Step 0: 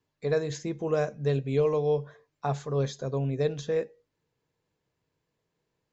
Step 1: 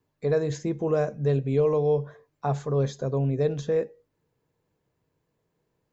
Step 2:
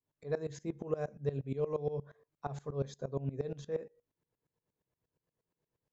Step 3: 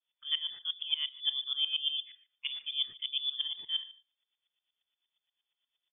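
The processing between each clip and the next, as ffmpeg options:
-filter_complex "[0:a]equalizer=f=4.1k:w=0.41:g=-7.5,asplit=2[a][b];[b]alimiter=level_in=1.5dB:limit=-24dB:level=0:latency=1,volume=-1.5dB,volume=-1dB[c];[a][c]amix=inputs=2:normalize=0"
-af "aeval=exprs='val(0)*pow(10,-19*if(lt(mod(-8.5*n/s,1),2*abs(-8.5)/1000),1-mod(-8.5*n/s,1)/(2*abs(-8.5)/1000),(mod(-8.5*n/s,1)-2*abs(-8.5)/1000)/(1-2*abs(-8.5)/1000))/20)':c=same,volume=-6dB"
-af "aecho=1:1:147:0.0891,lowpass=f=3.1k:t=q:w=0.5098,lowpass=f=3.1k:t=q:w=0.6013,lowpass=f=3.1k:t=q:w=0.9,lowpass=f=3.1k:t=q:w=2.563,afreqshift=-3600,volume=2dB"

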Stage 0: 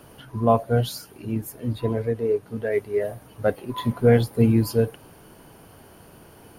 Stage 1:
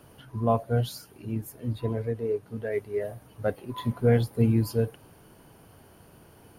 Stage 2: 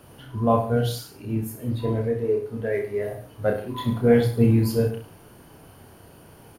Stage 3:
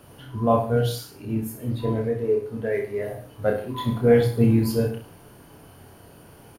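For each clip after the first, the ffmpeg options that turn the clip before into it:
-af "equalizer=f=100:t=o:w=1.4:g=3.5,volume=-6dB"
-af "aecho=1:1:30|63|99.3|139.2|183.2:0.631|0.398|0.251|0.158|0.1,volume=3dB"
-filter_complex "[0:a]asplit=2[a][b];[b]adelay=23,volume=-11dB[c];[a][c]amix=inputs=2:normalize=0"

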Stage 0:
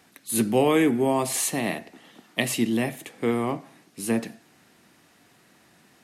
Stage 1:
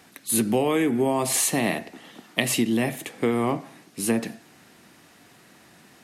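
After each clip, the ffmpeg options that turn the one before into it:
-af "acompressor=threshold=-23dB:ratio=10,volume=5dB"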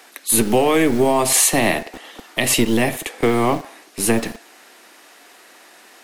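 -filter_complex "[0:a]acrossover=split=330[a][b];[a]acrusher=bits=4:dc=4:mix=0:aa=0.000001[c];[c][b]amix=inputs=2:normalize=0,alimiter=level_in=9dB:limit=-1dB:release=50:level=0:latency=1,volume=-1dB"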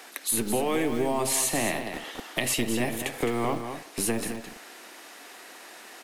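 -af "acompressor=threshold=-29dB:ratio=2.5,aecho=1:1:213:0.376"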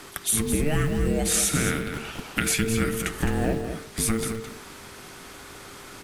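-af "aeval=exprs='val(0)+0.00178*(sin(2*PI*50*n/s)+sin(2*PI*2*50*n/s)/2+sin(2*PI*3*50*n/s)/3+sin(2*PI*4*50*n/s)/4+sin(2*PI*5*50*n/s)/5)':c=same,afreqshift=-450,volume=3dB"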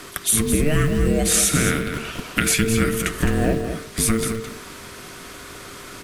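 -af "asuperstop=centerf=830:order=4:qfactor=6.5,volume=5dB"

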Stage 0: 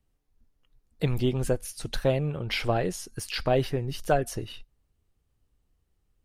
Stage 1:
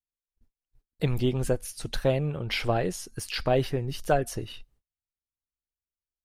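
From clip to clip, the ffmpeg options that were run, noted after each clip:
-af "agate=range=-31dB:threshold=-60dB:ratio=16:detection=peak"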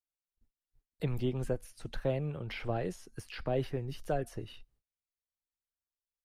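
-filter_complex "[0:a]acrossover=split=210|630|2700[a][b][c][d];[c]alimiter=level_in=3dB:limit=-24dB:level=0:latency=1:release=39,volume=-3dB[e];[d]acompressor=threshold=-47dB:ratio=6[f];[a][b][e][f]amix=inputs=4:normalize=0,volume=-7dB"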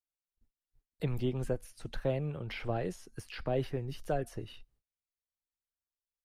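-af anull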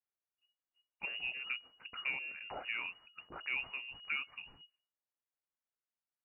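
-af "tiltshelf=f=720:g=-6,lowpass=f=2.5k:t=q:w=0.5098,lowpass=f=2.5k:t=q:w=0.6013,lowpass=f=2.5k:t=q:w=0.9,lowpass=f=2.5k:t=q:w=2.563,afreqshift=-2900,volume=-4dB"

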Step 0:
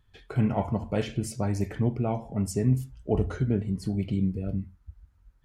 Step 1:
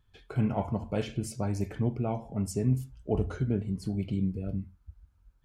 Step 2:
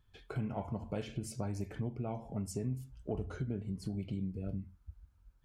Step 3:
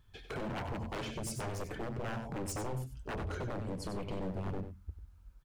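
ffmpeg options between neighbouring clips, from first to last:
-af "bandreject=f=1.9k:w=9.6,volume=-3dB"
-af "acompressor=threshold=-34dB:ratio=3,volume=-1.5dB"
-af "aeval=exprs='0.0119*(abs(mod(val(0)/0.0119+3,4)-2)-1)':c=same,aecho=1:1:94:0.355,volume=5.5dB"

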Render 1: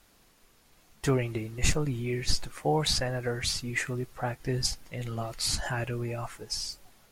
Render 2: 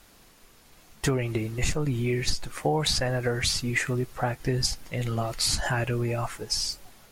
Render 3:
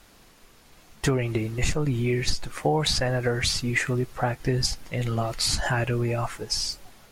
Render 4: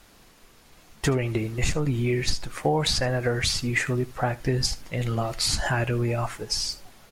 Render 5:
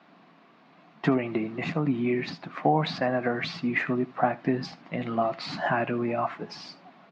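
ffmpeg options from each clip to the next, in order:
-af "acompressor=threshold=-28dB:ratio=6,volume=6.5dB"
-af "highshelf=f=8.1k:g=-5,volume=2dB"
-af "aecho=1:1:76:0.1"
-af "highpass=f=170:w=0.5412,highpass=f=170:w=1.3066,equalizer=f=170:t=q:w=4:g=10,equalizer=f=270:t=q:w=4:g=7,equalizer=f=480:t=q:w=4:g=-4,equalizer=f=690:t=q:w=4:g=8,equalizer=f=1.1k:t=q:w=4:g=6,equalizer=f=3.2k:t=q:w=4:g=-4,lowpass=f=3.5k:w=0.5412,lowpass=f=3.5k:w=1.3066,volume=-2dB"

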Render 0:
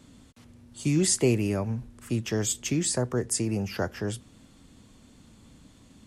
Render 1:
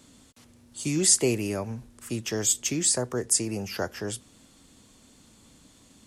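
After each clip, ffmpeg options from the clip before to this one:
-af "bass=f=250:g=-6,treble=f=4k:g=6"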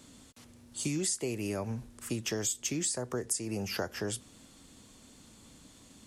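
-af "acompressor=threshold=-29dB:ratio=12"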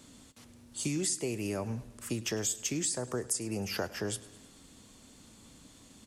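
-af "aecho=1:1:105|210|315|420|525:0.106|0.0614|0.0356|0.0207|0.012"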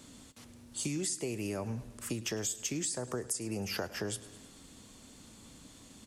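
-af "acompressor=threshold=-36dB:ratio=2,volume=1.5dB"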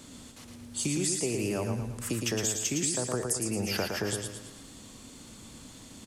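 -af "aecho=1:1:113|226|339|452|565:0.562|0.242|0.104|0.0447|0.0192,volume=4.5dB"

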